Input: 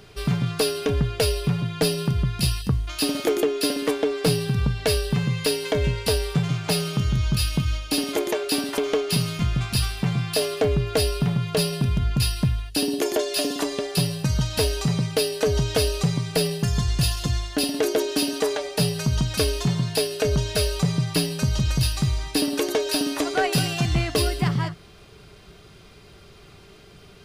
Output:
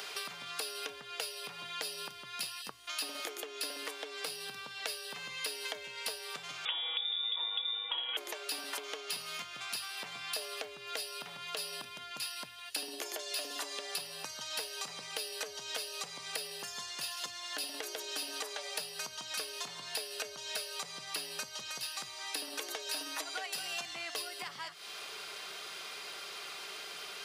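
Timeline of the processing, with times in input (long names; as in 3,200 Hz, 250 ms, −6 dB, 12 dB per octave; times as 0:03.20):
0:06.65–0:08.17: voice inversion scrambler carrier 3,600 Hz
0:22.96–0:23.46: comb filter 6.3 ms, depth 83%
whole clip: downward compressor 5 to 1, threshold −34 dBFS; high-pass filter 820 Hz 12 dB per octave; multiband upward and downward compressor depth 70%; level +1 dB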